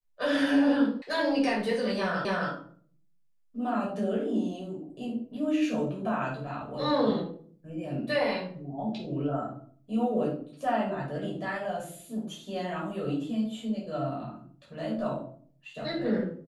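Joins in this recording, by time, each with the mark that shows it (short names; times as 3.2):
1.02 sound cut off
2.25 repeat of the last 0.27 s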